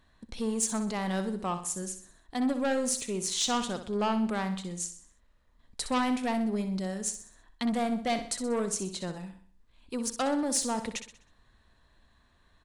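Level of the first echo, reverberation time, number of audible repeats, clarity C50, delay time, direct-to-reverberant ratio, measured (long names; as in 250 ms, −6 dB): −10.0 dB, no reverb audible, 4, no reverb audible, 63 ms, no reverb audible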